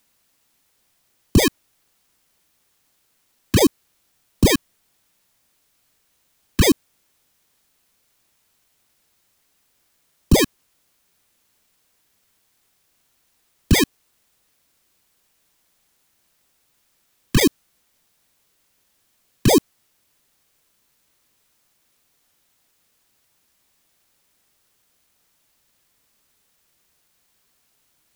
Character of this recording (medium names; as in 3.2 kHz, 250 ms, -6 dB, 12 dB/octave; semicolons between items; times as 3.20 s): aliases and images of a low sample rate 1.4 kHz, jitter 0%; phasing stages 2, 3.9 Hz, lowest notch 630–1600 Hz; a quantiser's noise floor 12-bit, dither triangular